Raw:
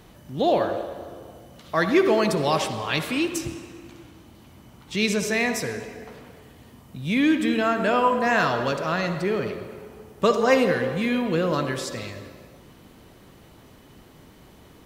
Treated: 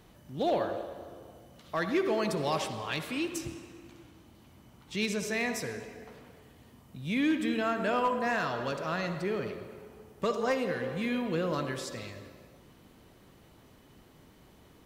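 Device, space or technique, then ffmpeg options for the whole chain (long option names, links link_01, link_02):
limiter into clipper: -af "alimiter=limit=-10dB:level=0:latency=1:release=499,asoftclip=type=hard:threshold=-13.5dB,volume=-7.5dB"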